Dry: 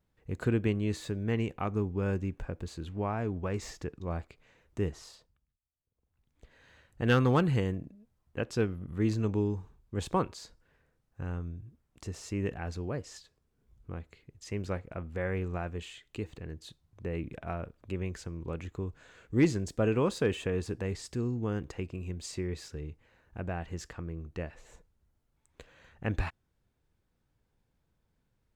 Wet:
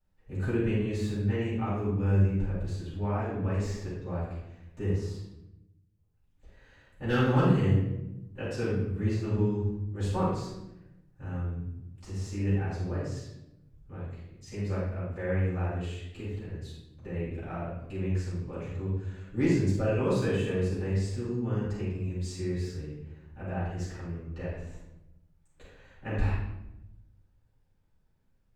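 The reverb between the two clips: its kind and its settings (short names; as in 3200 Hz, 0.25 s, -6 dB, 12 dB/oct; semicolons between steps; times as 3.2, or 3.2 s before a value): shoebox room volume 290 m³, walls mixed, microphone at 7.4 m; gain -16 dB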